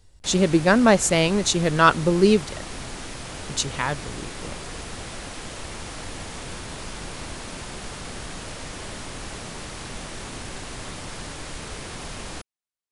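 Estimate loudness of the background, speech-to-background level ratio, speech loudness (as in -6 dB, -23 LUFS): -35.0 LUFS, 15.0 dB, -20.0 LUFS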